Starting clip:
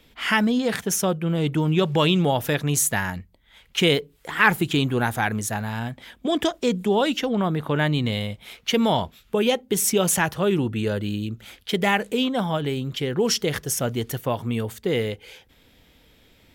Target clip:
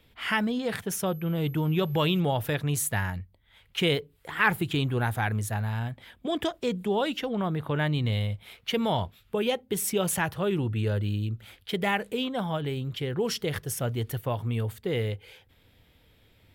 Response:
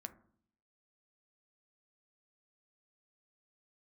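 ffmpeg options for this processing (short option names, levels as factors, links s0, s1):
-filter_complex "[0:a]asettb=1/sr,asplit=3[s0][s1][s2];[s0]atrim=end=1.064[s3];[s1]atrim=start=1.06:end=2.2,asetpts=PTS-STARTPTS,afade=t=in:d=0.004:c=qsin,afade=t=out:st=1.136:d=0.004:c=qsin,aeval=exprs='val(0)+0.00562*sin(2*PI*12000*n/s)':c=same[s4];[s2]atrim=start=2.196[s5];[s3][s4]acrossfade=d=0.004:c1=hsin:c2=qsin[s6];[s6][s5]acrossfade=d=0.004:c1=qsin:c2=hsin,equalizer=f=100:t=o:w=0.67:g=9,equalizer=f=250:t=o:w=0.67:g=-3,equalizer=f=6300:t=o:w=0.67:g=-7,volume=0.531"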